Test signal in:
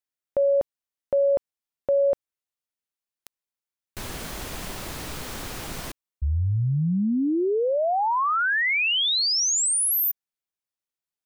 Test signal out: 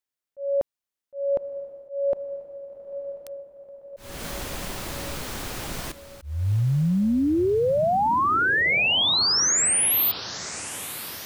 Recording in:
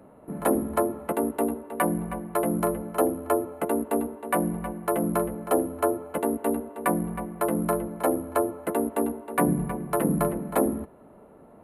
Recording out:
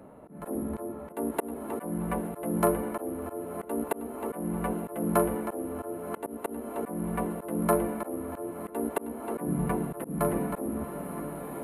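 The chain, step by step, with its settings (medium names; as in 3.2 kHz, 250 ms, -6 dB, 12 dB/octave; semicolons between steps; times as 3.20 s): echo that smears into a reverb 1036 ms, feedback 56%, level -14.5 dB; slow attack 300 ms; trim +1.5 dB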